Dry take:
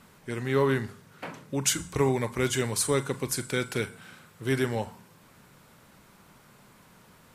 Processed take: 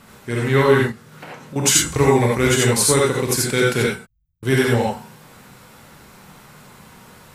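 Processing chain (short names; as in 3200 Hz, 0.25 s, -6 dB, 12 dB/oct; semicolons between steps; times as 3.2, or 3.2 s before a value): 0.82–1.56 compressor 4:1, threshold -45 dBFS, peak gain reduction 14.5 dB; 3.96–4.43 inverse Chebyshev band-stop 320–8900 Hz, stop band 80 dB; non-linear reverb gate 0.11 s rising, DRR -2.5 dB; gain +7 dB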